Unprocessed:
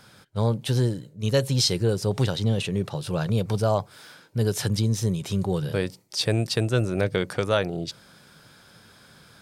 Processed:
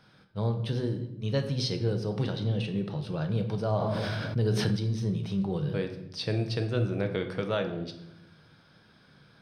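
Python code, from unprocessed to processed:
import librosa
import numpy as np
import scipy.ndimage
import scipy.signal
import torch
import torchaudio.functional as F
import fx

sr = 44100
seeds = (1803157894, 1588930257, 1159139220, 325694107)

y = scipy.signal.savgol_filter(x, 15, 4, mode='constant')
y = fx.peak_eq(y, sr, hz=230.0, db=3.0, octaves=2.0)
y = fx.room_shoebox(y, sr, seeds[0], volume_m3=270.0, walls='mixed', distance_m=0.61)
y = fx.env_flatten(y, sr, amount_pct=70, at=(3.79, 4.75), fade=0.02)
y = y * 10.0 ** (-8.5 / 20.0)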